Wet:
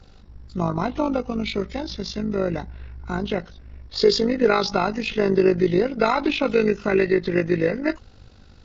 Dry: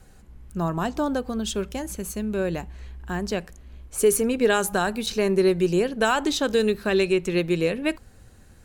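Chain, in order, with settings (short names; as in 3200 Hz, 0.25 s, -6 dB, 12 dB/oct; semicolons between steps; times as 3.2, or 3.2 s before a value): nonlinear frequency compression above 1100 Hz 1.5:1; AM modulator 50 Hz, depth 50%; gain +5 dB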